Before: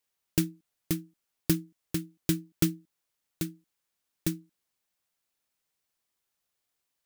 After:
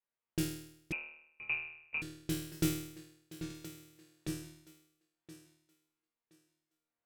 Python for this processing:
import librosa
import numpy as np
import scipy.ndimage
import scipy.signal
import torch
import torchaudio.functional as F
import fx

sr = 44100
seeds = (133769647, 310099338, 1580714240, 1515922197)

p1 = fx.env_lowpass(x, sr, base_hz=1900.0, full_db=-24.5)
p2 = fx.tremolo_random(p1, sr, seeds[0], hz=3.5, depth_pct=55)
p3 = fx.resonator_bank(p2, sr, root=39, chord='fifth', decay_s=0.72)
p4 = p3 + fx.echo_thinned(p3, sr, ms=1022, feedback_pct=23, hz=220.0, wet_db=-13.0, dry=0)
p5 = fx.freq_invert(p4, sr, carrier_hz=2700, at=(0.92, 2.02))
p6 = fx.band_squash(p5, sr, depth_pct=70, at=(3.5, 4.28))
y = p6 * librosa.db_to_amplitude(12.5)